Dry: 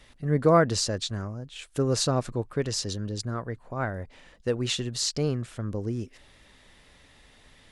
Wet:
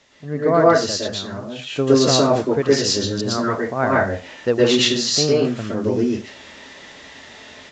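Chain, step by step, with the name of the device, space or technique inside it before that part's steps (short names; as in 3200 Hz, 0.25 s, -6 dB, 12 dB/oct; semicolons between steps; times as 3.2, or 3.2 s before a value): filmed off a television (BPF 150–6300 Hz; bell 690 Hz +4.5 dB 0.32 oct; reverb RT60 0.30 s, pre-delay 0.11 s, DRR -5.5 dB; white noise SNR 33 dB; AGC gain up to 11 dB; gain -1 dB; AAC 64 kbps 16000 Hz)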